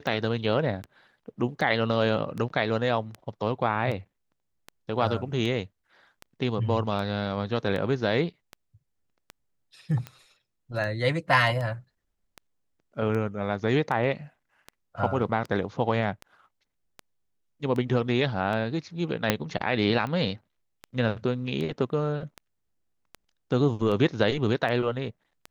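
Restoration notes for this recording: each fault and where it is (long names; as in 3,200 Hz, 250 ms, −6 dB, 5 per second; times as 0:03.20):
scratch tick 78 rpm −22 dBFS
0:19.30: click −5 dBFS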